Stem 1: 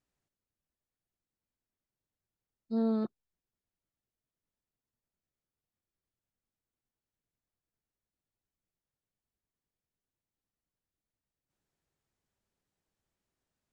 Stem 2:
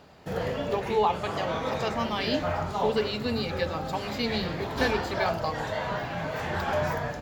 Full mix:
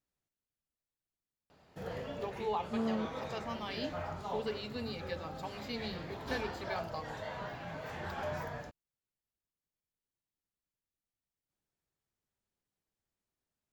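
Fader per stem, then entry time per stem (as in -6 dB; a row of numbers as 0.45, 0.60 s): -5.0, -11.0 dB; 0.00, 1.50 s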